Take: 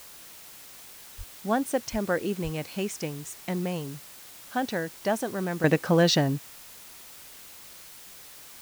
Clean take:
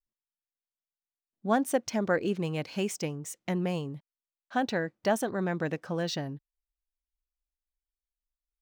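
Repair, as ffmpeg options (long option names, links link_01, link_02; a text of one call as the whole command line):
ffmpeg -i in.wav -filter_complex "[0:a]asplit=3[link_01][link_02][link_03];[link_01]afade=type=out:start_time=1.17:duration=0.02[link_04];[link_02]highpass=frequency=140:width=0.5412,highpass=frequency=140:width=1.3066,afade=type=in:start_time=1.17:duration=0.02,afade=type=out:start_time=1.29:duration=0.02[link_05];[link_03]afade=type=in:start_time=1.29:duration=0.02[link_06];[link_04][link_05][link_06]amix=inputs=3:normalize=0,asplit=3[link_07][link_08][link_09];[link_07]afade=type=out:start_time=1.91:duration=0.02[link_10];[link_08]highpass=frequency=140:width=0.5412,highpass=frequency=140:width=1.3066,afade=type=in:start_time=1.91:duration=0.02,afade=type=out:start_time=2.03:duration=0.02[link_11];[link_09]afade=type=in:start_time=2.03:duration=0.02[link_12];[link_10][link_11][link_12]amix=inputs=3:normalize=0,asplit=3[link_13][link_14][link_15];[link_13]afade=type=out:start_time=2.43:duration=0.02[link_16];[link_14]highpass=frequency=140:width=0.5412,highpass=frequency=140:width=1.3066,afade=type=in:start_time=2.43:duration=0.02,afade=type=out:start_time=2.55:duration=0.02[link_17];[link_15]afade=type=in:start_time=2.55:duration=0.02[link_18];[link_16][link_17][link_18]amix=inputs=3:normalize=0,afwtdn=0.0045,asetnsamples=nb_out_samples=441:pad=0,asendcmd='5.64 volume volume -11dB',volume=0dB" out.wav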